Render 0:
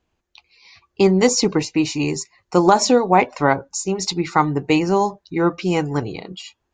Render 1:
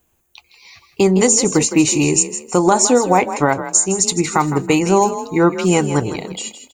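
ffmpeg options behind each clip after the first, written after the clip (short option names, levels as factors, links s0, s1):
-filter_complex "[0:a]aexciter=amount=14.6:drive=2.4:freq=7400,alimiter=limit=0.398:level=0:latency=1:release=264,asplit=4[s0][s1][s2][s3];[s1]adelay=161,afreqshift=35,volume=0.266[s4];[s2]adelay=322,afreqshift=70,volume=0.0822[s5];[s3]adelay=483,afreqshift=105,volume=0.0257[s6];[s0][s4][s5][s6]amix=inputs=4:normalize=0,volume=1.78"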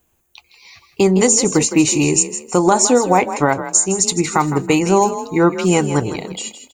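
-af anull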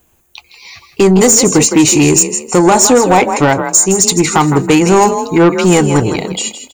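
-af "asoftclip=type=tanh:threshold=0.266,volume=2.82"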